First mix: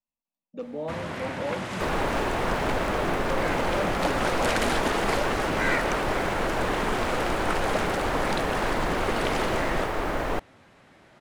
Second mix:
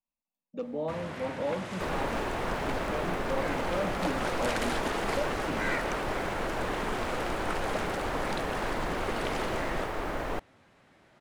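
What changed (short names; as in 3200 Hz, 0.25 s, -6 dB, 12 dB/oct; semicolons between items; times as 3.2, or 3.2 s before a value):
first sound -6.0 dB; second sound -5.5 dB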